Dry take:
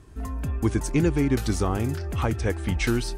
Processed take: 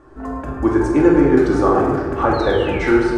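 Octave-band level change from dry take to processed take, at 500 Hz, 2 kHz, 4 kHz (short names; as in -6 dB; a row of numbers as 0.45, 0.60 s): +14.0, +9.0, +3.5 dB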